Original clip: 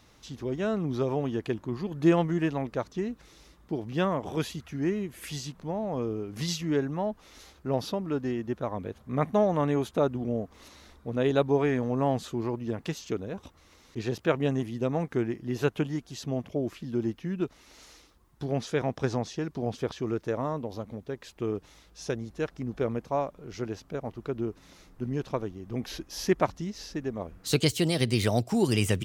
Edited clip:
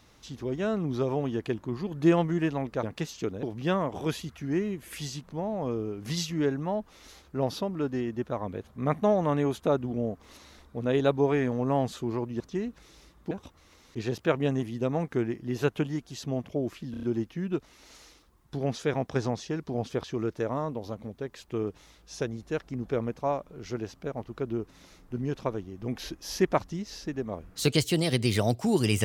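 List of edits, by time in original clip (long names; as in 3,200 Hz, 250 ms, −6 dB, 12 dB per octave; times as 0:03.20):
0:02.83–0:03.74: swap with 0:12.71–0:13.31
0:16.91: stutter 0.03 s, 5 plays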